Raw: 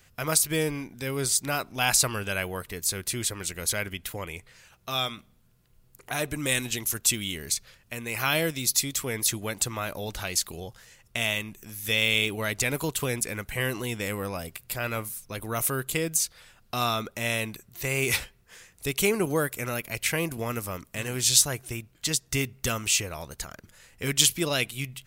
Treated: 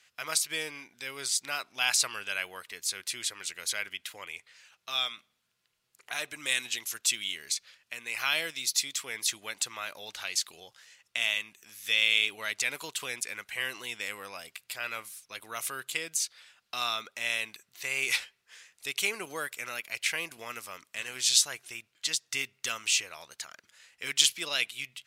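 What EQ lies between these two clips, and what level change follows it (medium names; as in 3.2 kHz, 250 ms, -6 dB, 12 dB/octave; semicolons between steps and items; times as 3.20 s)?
band-pass filter 3.3 kHz, Q 0.66; 0.0 dB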